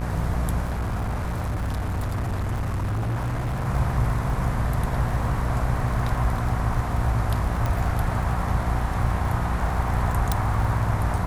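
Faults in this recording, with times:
buzz 60 Hz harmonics 40 -28 dBFS
crackle 42 per s -30 dBFS
0.67–3.68 s: clipped -23 dBFS
7.66 s: pop
10.32 s: pop

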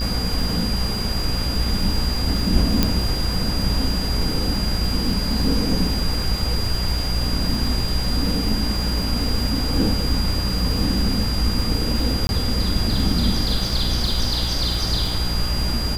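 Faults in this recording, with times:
buzz 60 Hz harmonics 27 -26 dBFS
crackle 140 per s -28 dBFS
whine 4.8 kHz -27 dBFS
2.83 s: pop -2 dBFS
12.27–12.29 s: dropout 21 ms

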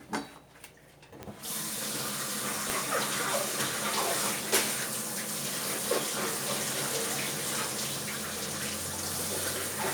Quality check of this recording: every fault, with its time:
1.23 s: pop -23 dBFS
2.70 s: pop
7.86–8.41 s: clipped -30.5 dBFS

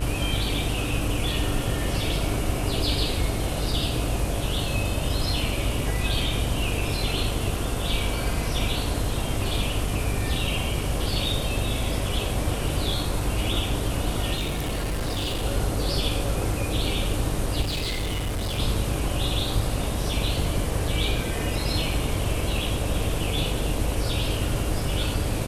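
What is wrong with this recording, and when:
buzz 50 Hz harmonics 34 -30 dBFS
14.35–15.45 s: clipped -23.5 dBFS
17.61–18.60 s: clipped -24 dBFS

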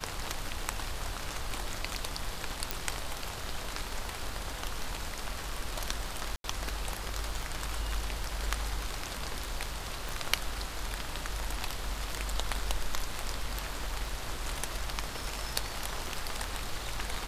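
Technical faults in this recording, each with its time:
crackle 11 per s -39 dBFS
2.71 s: pop
6.36–6.44 s: dropout 82 ms
10.09 s: pop

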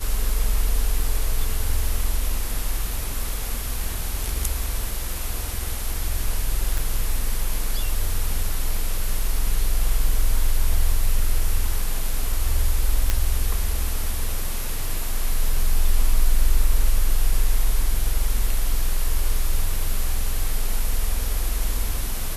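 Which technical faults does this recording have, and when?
6.78 s: pop
13.10 s: pop -6 dBFS

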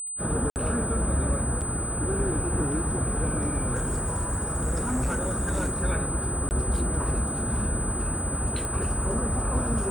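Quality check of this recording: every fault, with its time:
whine 8.1 kHz -31 dBFS
0.50–0.56 s: dropout 59 ms
1.61–1.62 s: dropout 6.4 ms
3.74–5.83 s: clipped -22.5 dBFS
6.49–6.51 s: dropout 19 ms
8.65 s: pop

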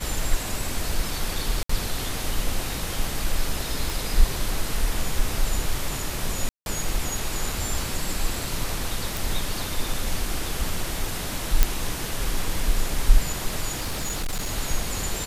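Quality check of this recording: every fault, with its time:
1.63–1.69 s: dropout 64 ms
3.90 s: pop
6.49–6.66 s: dropout 171 ms
9.17 s: pop
11.63 s: pop -2 dBFS
13.76–14.53 s: clipped -23 dBFS

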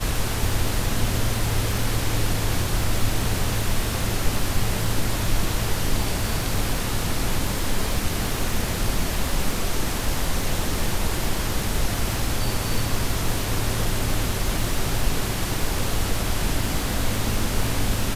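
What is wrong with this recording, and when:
crackle 120 per s -28 dBFS

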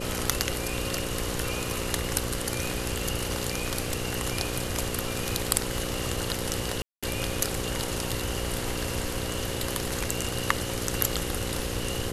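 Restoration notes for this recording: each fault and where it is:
buzz 60 Hz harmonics 9 -35 dBFS
6.82–7.03 s: dropout 206 ms

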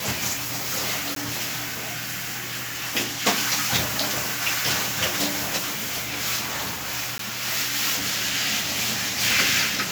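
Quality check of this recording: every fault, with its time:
1.15–1.16 s: dropout 13 ms
5.57–6.06 s: clipped -25 dBFS
7.18–7.19 s: dropout 13 ms

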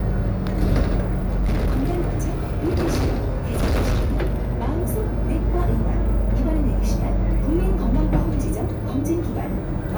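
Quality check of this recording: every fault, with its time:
1.01–4.76 s: clipped -16.5 dBFS

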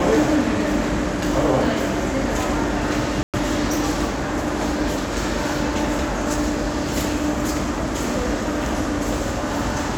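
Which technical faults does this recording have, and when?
3.23–3.34 s: dropout 107 ms

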